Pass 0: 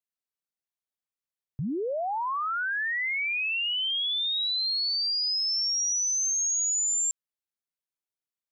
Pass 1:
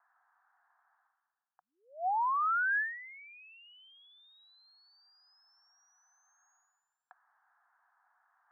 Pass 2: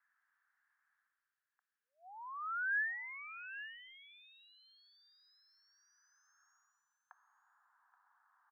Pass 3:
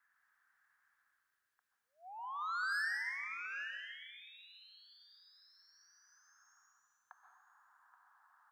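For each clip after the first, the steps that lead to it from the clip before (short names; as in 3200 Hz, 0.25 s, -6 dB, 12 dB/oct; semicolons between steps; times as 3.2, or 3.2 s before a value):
Chebyshev band-pass 730–1700 Hz, order 4; reverse; upward compressor, threshold -46 dBFS; reverse
Bessel high-pass 740 Hz; high-pass sweep 2100 Hz -> 1000 Hz, 5.54–7.05; echo 0.827 s -13 dB; gain -5 dB
soft clip -39.5 dBFS, distortion -9 dB; plate-style reverb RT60 0.88 s, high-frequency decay 0.9×, pre-delay 0.115 s, DRR 3.5 dB; gain +3.5 dB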